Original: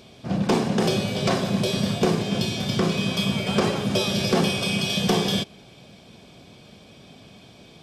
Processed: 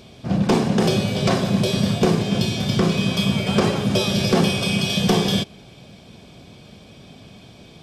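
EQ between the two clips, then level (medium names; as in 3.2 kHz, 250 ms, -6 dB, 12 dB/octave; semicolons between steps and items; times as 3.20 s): bass shelf 150 Hz +6 dB; +2.0 dB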